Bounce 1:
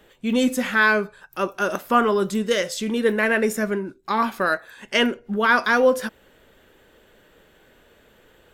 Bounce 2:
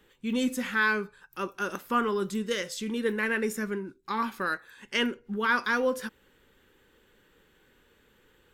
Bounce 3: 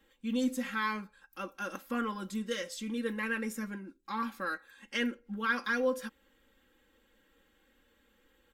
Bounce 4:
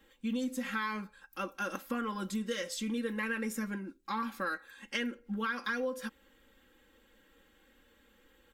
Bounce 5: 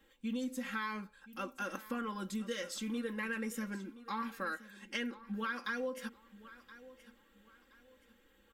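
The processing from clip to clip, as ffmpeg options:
-af "equalizer=f=650:w=4.2:g=-14,volume=0.447"
-af "aecho=1:1:3.7:0.91,volume=0.398"
-af "acompressor=threshold=0.02:ratio=12,volume=1.5"
-af "aecho=1:1:1023|2046|3069:0.133|0.0427|0.0137,volume=0.668"

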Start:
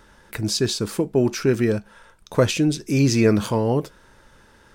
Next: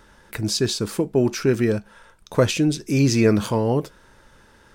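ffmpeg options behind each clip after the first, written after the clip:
-af anull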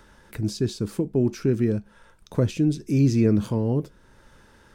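-filter_complex "[0:a]acrossover=split=380[s0][s1];[s1]acompressor=threshold=0.00126:ratio=1.5[s2];[s0][s2]amix=inputs=2:normalize=0"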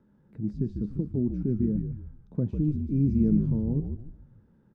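-filter_complex "[0:a]bandpass=f=190:t=q:w=2.1:csg=0,asplit=2[s0][s1];[s1]asplit=5[s2][s3][s4][s5][s6];[s2]adelay=147,afreqshift=-64,volume=0.531[s7];[s3]adelay=294,afreqshift=-128,volume=0.219[s8];[s4]adelay=441,afreqshift=-192,volume=0.0891[s9];[s5]adelay=588,afreqshift=-256,volume=0.0367[s10];[s6]adelay=735,afreqshift=-320,volume=0.015[s11];[s7][s8][s9][s10][s11]amix=inputs=5:normalize=0[s12];[s0][s12]amix=inputs=2:normalize=0"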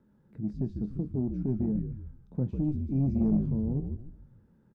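-filter_complex "[0:a]asoftclip=type=tanh:threshold=0.15,asplit=2[s0][s1];[s1]adelay=23,volume=0.237[s2];[s0][s2]amix=inputs=2:normalize=0,volume=0.794"

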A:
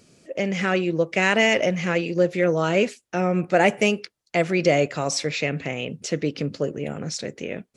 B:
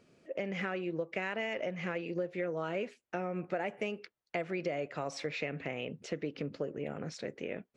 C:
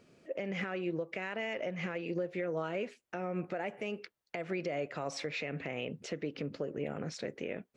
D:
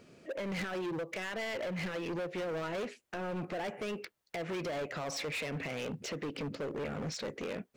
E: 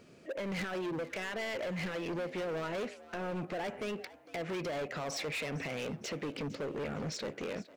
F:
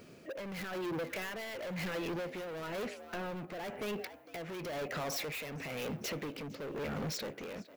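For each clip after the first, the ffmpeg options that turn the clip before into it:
-af "bass=f=250:g=-5,treble=f=4000:g=-15,acompressor=threshold=0.0501:ratio=6,volume=0.501"
-af "alimiter=level_in=1.58:limit=0.0631:level=0:latency=1:release=132,volume=0.631,volume=1.26"
-af "asoftclip=type=hard:threshold=0.0112,volume=1.78"
-filter_complex "[0:a]asplit=4[s0][s1][s2][s3];[s1]adelay=457,afreqshift=67,volume=0.126[s4];[s2]adelay=914,afreqshift=134,volume=0.0427[s5];[s3]adelay=1371,afreqshift=201,volume=0.0146[s6];[s0][s4][s5][s6]amix=inputs=4:normalize=0"
-af "asoftclip=type=hard:threshold=0.0126,tremolo=f=1:d=0.5,aexciter=amount=2.7:drive=5.8:freq=11000,volume=1.5"

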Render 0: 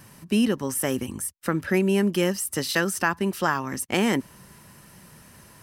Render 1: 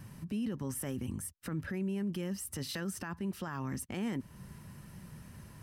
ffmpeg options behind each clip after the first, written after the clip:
-af "bass=f=250:g=11,treble=f=4000:g=-3,acompressor=threshold=0.0282:ratio=1.5,alimiter=limit=0.075:level=0:latency=1:release=12,volume=0.473"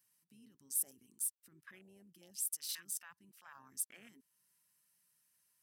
-af "aderivative,afwtdn=0.00158,aeval=exprs='0.0531*(cos(1*acos(clip(val(0)/0.0531,-1,1)))-cos(1*PI/2))+0.00119*(cos(7*acos(clip(val(0)/0.0531,-1,1)))-cos(7*PI/2))':c=same,volume=1.58"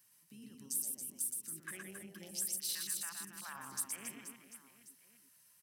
-filter_complex "[0:a]acompressor=threshold=0.00501:ratio=3,asplit=2[s0][s1];[s1]aecho=0:1:120|276|478.8|742.4|1085:0.631|0.398|0.251|0.158|0.1[s2];[s0][s2]amix=inputs=2:normalize=0,volume=2.51"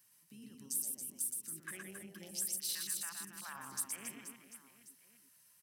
-af anull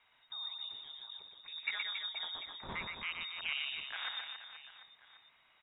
-af "lowpass=f=3300:t=q:w=0.5098,lowpass=f=3300:t=q:w=0.6013,lowpass=f=3300:t=q:w=0.9,lowpass=f=3300:t=q:w=2.563,afreqshift=-3900,volume=3.35"

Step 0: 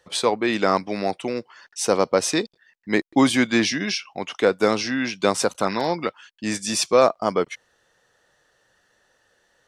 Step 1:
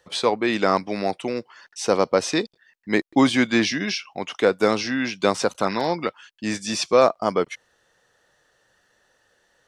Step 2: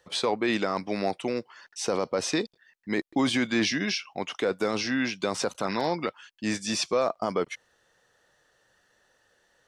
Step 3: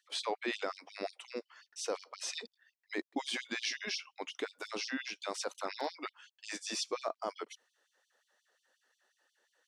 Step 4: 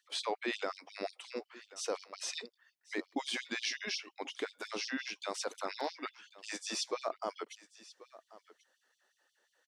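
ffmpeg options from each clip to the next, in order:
-filter_complex "[0:a]acrossover=split=6400[s0][s1];[s1]acompressor=threshold=0.00794:ratio=4:attack=1:release=60[s2];[s0][s2]amix=inputs=2:normalize=0"
-af "alimiter=limit=0.224:level=0:latency=1:release=20,volume=0.75"
-af "afftfilt=real='re*gte(b*sr/1024,210*pow(3000/210,0.5+0.5*sin(2*PI*5.6*pts/sr)))':imag='im*gte(b*sr/1024,210*pow(3000/210,0.5+0.5*sin(2*PI*5.6*pts/sr)))':win_size=1024:overlap=0.75,volume=0.422"
-af "aecho=1:1:1086:0.112"

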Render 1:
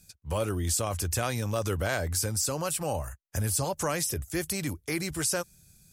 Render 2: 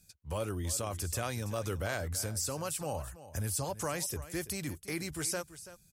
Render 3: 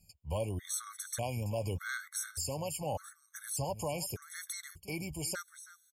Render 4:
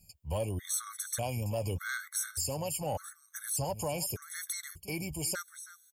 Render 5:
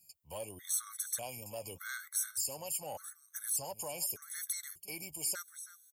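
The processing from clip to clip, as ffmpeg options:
-af "aecho=1:1:333:0.178,volume=0.501"
-af "aecho=1:1:1.4:0.34,afftfilt=real='re*gt(sin(2*PI*0.84*pts/sr)*(1-2*mod(floor(b*sr/1024/1100),2)),0)':imag='im*gt(sin(2*PI*0.84*pts/sr)*(1-2*mod(floor(b*sr/1024/1100),2)),0)':win_size=1024:overlap=0.75"
-filter_complex "[0:a]highshelf=f=11000:g=7,asplit=2[s0][s1];[s1]asoftclip=type=tanh:threshold=0.0158,volume=0.355[s2];[s0][s2]amix=inputs=2:normalize=0"
-af "highpass=f=500:p=1,crystalizer=i=1:c=0,volume=0.501"

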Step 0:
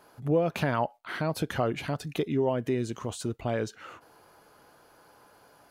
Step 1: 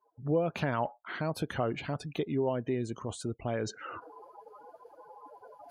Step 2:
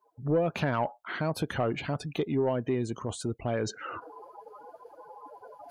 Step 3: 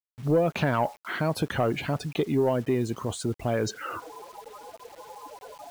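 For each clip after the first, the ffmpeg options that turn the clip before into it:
-af "afftdn=nr=36:nf=-47,areverse,acompressor=mode=upward:threshold=0.0355:ratio=2.5,areverse,volume=0.668"
-af "asoftclip=type=tanh:threshold=0.1,volume=1.5"
-af "acrusher=bits=8:mix=0:aa=0.000001,volume=1.5"

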